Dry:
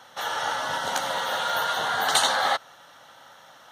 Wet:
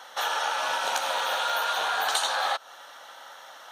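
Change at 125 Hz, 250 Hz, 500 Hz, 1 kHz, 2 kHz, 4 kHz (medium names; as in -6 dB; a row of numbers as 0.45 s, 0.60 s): under -15 dB, under -10 dB, -2.5 dB, -1.5 dB, -1.5 dB, -2.0 dB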